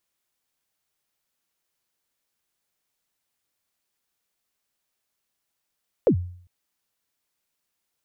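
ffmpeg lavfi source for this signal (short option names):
-f lavfi -i "aevalsrc='0.266*pow(10,-3*t/0.56)*sin(2*PI*(580*0.086/log(89/580)*(exp(log(89/580)*min(t,0.086)/0.086)-1)+89*max(t-0.086,0)))':d=0.4:s=44100"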